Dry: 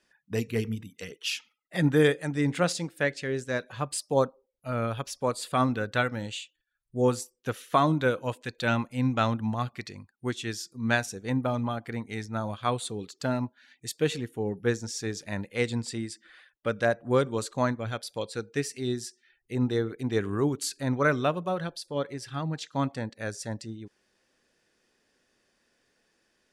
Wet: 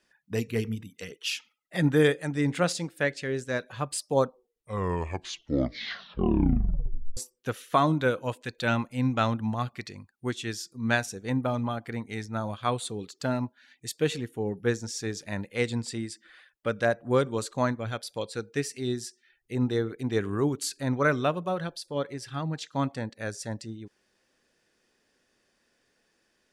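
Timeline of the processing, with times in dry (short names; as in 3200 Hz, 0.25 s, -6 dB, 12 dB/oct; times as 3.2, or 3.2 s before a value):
4.23 tape stop 2.94 s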